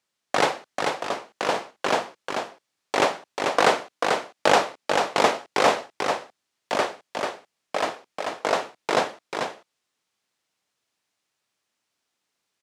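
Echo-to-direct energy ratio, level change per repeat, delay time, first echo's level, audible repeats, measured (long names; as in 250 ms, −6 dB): −4.5 dB, repeats not evenly spaced, 440 ms, −4.5 dB, 1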